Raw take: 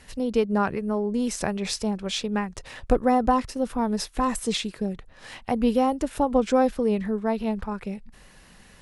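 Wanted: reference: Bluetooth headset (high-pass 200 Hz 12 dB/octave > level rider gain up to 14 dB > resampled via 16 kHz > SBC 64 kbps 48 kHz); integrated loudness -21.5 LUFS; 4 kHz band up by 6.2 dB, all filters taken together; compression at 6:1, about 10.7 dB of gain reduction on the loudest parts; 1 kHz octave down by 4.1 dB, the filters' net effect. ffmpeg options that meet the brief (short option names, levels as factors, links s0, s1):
-af "equalizer=f=1000:t=o:g=-6,equalizer=f=4000:t=o:g=8,acompressor=threshold=0.0447:ratio=6,highpass=200,dynaudnorm=m=5.01,aresample=16000,aresample=44100,volume=3.76" -ar 48000 -c:a sbc -b:a 64k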